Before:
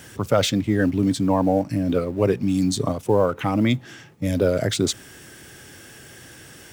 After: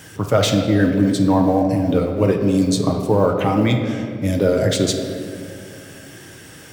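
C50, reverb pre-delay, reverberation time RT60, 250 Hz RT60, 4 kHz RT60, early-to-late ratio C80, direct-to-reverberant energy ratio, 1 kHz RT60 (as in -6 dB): 5.5 dB, 6 ms, 2.5 s, 3.4 s, 1.3 s, 6.5 dB, 2.5 dB, 2.0 s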